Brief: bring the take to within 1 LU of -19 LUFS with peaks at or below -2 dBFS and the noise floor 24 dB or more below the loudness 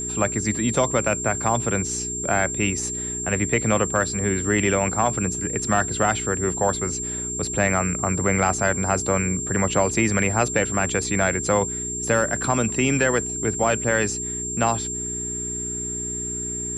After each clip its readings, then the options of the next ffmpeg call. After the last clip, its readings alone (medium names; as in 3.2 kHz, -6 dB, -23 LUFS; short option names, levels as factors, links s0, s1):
hum 60 Hz; highest harmonic 420 Hz; hum level -32 dBFS; steady tone 7.4 kHz; tone level -27 dBFS; loudness -22.0 LUFS; peak level -7.5 dBFS; loudness target -19.0 LUFS
-> -af "bandreject=f=60:t=h:w=4,bandreject=f=120:t=h:w=4,bandreject=f=180:t=h:w=4,bandreject=f=240:t=h:w=4,bandreject=f=300:t=h:w=4,bandreject=f=360:t=h:w=4,bandreject=f=420:t=h:w=4"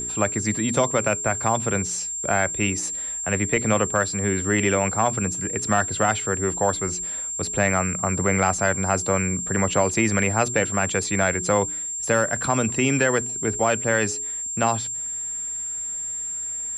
hum not found; steady tone 7.4 kHz; tone level -27 dBFS
-> -af "bandreject=f=7400:w=30"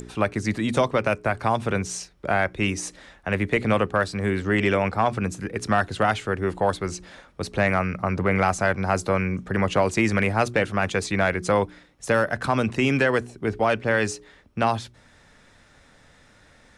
steady tone not found; loudness -24.0 LUFS; peak level -9.0 dBFS; loudness target -19.0 LUFS
-> -af "volume=1.78"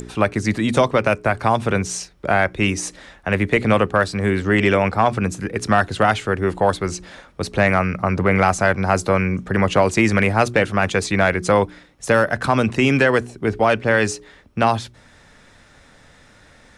loudness -19.0 LUFS; peak level -4.0 dBFS; noise floor -50 dBFS